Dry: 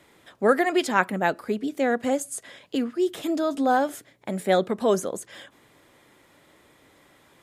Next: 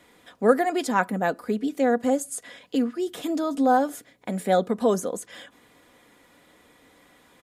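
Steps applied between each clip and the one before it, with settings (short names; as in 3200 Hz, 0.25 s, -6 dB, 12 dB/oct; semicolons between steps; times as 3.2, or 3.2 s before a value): dynamic EQ 2500 Hz, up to -7 dB, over -40 dBFS, Q 0.87; comb 4.1 ms, depth 41%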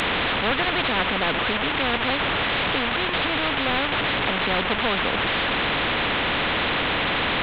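delta modulation 16 kbps, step -28 dBFS; spectral compressor 4:1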